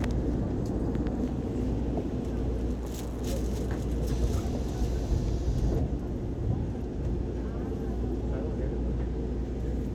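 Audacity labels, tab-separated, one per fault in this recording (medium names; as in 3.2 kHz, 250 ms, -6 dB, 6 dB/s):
2.730000	3.230000	clipped -31 dBFS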